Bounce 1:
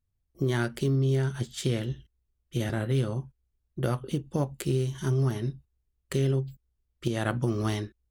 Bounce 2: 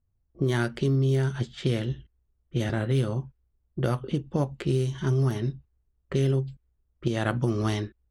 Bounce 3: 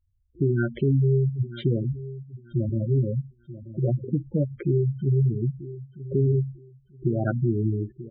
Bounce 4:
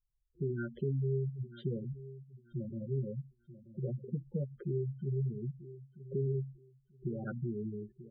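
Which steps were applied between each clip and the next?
level-controlled noise filter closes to 1.1 kHz, open at -21.5 dBFS; in parallel at -2.5 dB: compression, threshold -34 dBFS, peak gain reduction 12 dB
feedback delay 937 ms, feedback 25%, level -15 dB; spectral gate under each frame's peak -10 dB strong; trim +3 dB
static phaser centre 450 Hz, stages 8; trim -9 dB

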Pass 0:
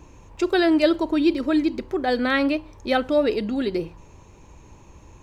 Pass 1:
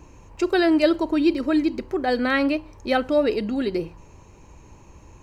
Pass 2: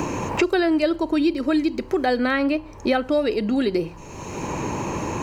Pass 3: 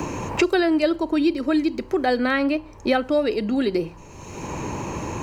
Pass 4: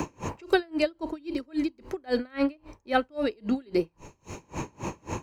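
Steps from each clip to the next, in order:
band-stop 3.5 kHz, Q 8.4
three bands compressed up and down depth 100%
three bands expanded up and down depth 40%
logarithmic tremolo 3.7 Hz, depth 33 dB

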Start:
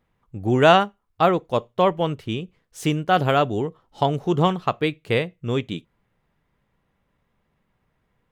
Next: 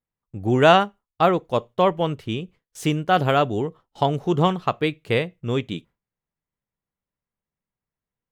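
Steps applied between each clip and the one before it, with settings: gate with hold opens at -43 dBFS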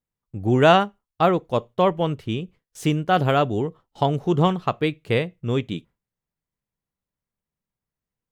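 bass shelf 370 Hz +3.5 dB; trim -1.5 dB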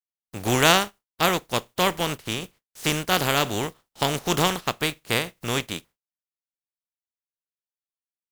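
spectral contrast reduction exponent 0.42; gate with hold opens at -50 dBFS; trim -3 dB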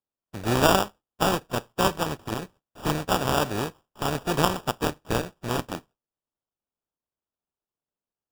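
sample-and-hold 21×; trim -1.5 dB

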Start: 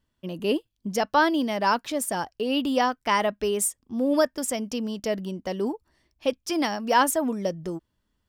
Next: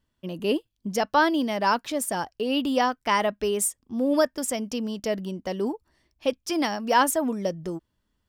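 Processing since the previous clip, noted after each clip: no audible change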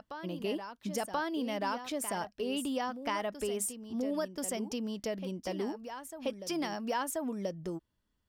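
compression 4:1, threshold -26 dBFS, peak gain reduction 9.5 dB; reverse echo 1032 ms -10 dB; trim -5.5 dB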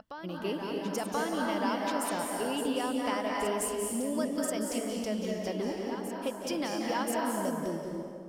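reverberation RT60 2.1 s, pre-delay 171 ms, DRR -1 dB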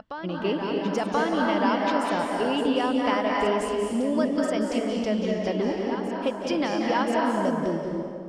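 low-pass 4 kHz 12 dB/octave; trim +7.5 dB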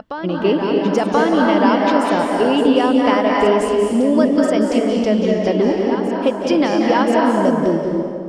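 peaking EQ 360 Hz +4.5 dB 1.8 oct; trim +6.5 dB

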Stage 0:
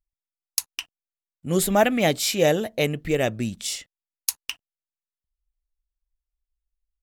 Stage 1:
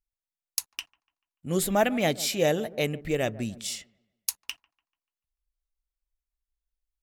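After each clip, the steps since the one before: feedback echo behind a low-pass 146 ms, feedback 37%, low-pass 1.2 kHz, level -18 dB; trim -4.5 dB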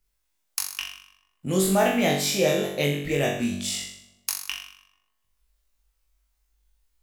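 flutter echo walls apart 3.6 m, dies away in 0.58 s; three bands compressed up and down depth 40%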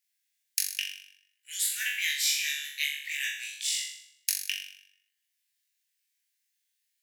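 steep high-pass 1.6 kHz 96 dB/octave

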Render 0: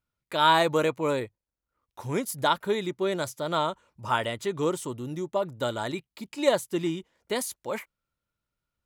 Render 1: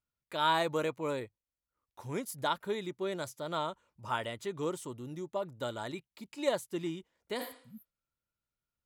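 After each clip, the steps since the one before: spectral replace 7.43–7.90 s, 250–11000 Hz both; trim -8 dB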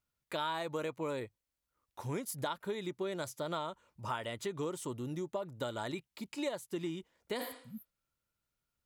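compression 6:1, threshold -38 dBFS, peak gain reduction 14 dB; trim +4 dB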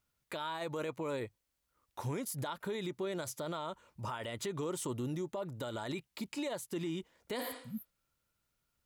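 peak limiter -35 dBFS, peak gain reduction 10.5 dB; trim +5 dB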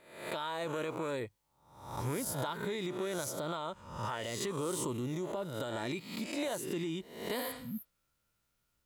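reverse spectral sustain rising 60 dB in 0.69 s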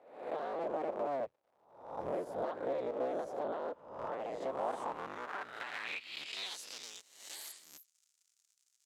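cycle switcher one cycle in 3, inverted; crackle 220 per s -53 dBFS; band-pass sweep 570 Hz -> 6.9 kHz, 4.31–7.06 s; trim +5.5 dB

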